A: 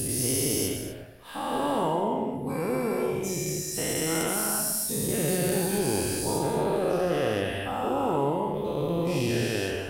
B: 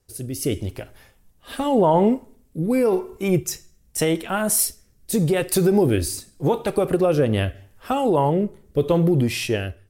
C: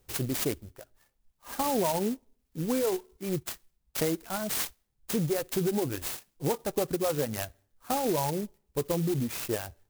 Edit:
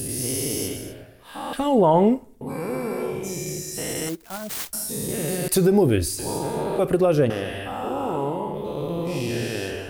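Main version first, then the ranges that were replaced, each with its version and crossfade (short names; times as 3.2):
A
1.53–2.41 from B
4.09–4.73 from C
5.48–6.19 from B
6.79–7.3 from B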